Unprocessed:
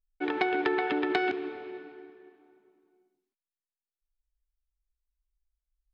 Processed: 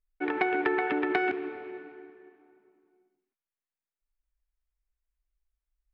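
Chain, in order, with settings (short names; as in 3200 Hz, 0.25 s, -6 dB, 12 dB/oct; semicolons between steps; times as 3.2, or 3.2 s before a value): resonant high shelf 2900 Hz -7.5 dB, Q 1.5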